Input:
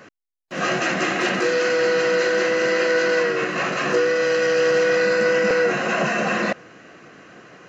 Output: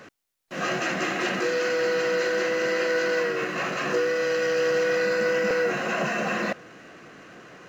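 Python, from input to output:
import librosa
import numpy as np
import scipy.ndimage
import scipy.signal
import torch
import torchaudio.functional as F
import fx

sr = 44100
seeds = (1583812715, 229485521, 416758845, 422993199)

y = fx.law_mismatch(x, sr, coded='mu')
y = y * 10.0 ** (-5.5 / 20.0)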